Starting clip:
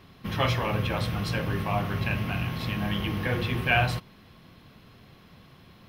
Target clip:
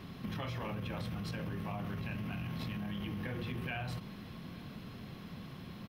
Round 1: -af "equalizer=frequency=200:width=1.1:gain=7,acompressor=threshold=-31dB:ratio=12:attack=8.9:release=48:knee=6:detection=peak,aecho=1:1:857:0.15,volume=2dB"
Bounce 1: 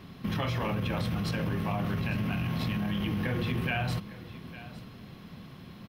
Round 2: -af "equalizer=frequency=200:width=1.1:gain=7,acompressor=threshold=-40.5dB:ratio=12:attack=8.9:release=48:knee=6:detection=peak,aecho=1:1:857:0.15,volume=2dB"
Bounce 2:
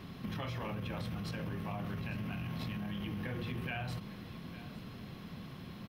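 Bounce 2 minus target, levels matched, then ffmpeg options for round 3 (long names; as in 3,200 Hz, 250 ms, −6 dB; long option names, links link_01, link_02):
echo-to-direct +8.5 dB
-af "equalizer=frequency=200:width=1.1:gain=7,acompressor=threshold=-40.5dB:ratio=12:attack=8.9:release=48:knee=6:detection=peak,aecho=1:1:857:0.0562,volume=2dB"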